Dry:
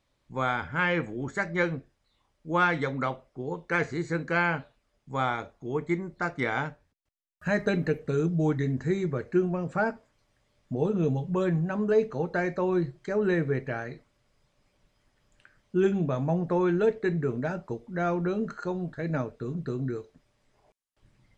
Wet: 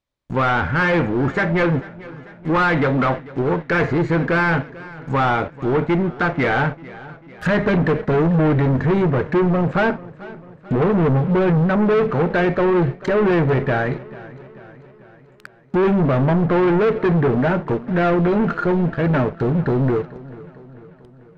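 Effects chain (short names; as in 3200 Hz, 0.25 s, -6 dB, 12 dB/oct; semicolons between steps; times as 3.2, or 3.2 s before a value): sample leveller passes 5; treble ducked by the level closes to 2200 Hz, closed at -19.5 dBFS; warbling echo 0.442 s, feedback 56%, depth 52 cents, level -19 dB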